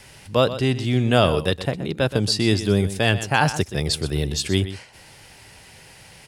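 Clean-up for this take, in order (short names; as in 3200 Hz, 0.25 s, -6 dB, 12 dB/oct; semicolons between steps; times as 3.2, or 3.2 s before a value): inverse comb 0.124 s -13 dB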